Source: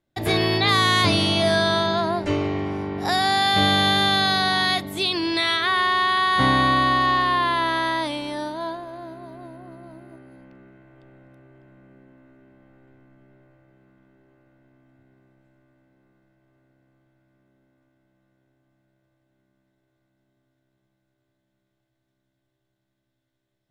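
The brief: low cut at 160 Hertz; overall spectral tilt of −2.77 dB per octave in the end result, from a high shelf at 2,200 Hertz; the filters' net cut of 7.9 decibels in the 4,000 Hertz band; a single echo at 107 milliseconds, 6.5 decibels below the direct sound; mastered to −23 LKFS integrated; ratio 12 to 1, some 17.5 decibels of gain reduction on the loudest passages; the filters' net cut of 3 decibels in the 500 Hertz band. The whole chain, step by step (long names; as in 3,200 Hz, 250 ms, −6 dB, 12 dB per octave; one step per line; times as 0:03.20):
high-pass filter 160 Hz
parametric band 500 Hz −4 dB
high-shelf EQ 2,200 Hz −5.5 dB
parametric band 4,000 Hz −4.5 dB
downward compressor 12 to 1, threshold −36 dBFS
single-tap delay 107 ms −6.5 dB
level +15.5 dB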